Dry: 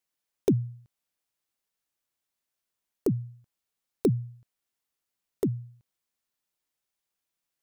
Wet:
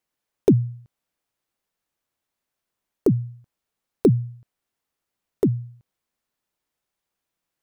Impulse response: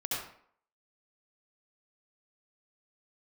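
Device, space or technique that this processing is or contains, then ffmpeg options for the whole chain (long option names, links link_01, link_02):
behind a face mask: -af "highshelf=frequency=2300:gain=-8,volume=7.5dB"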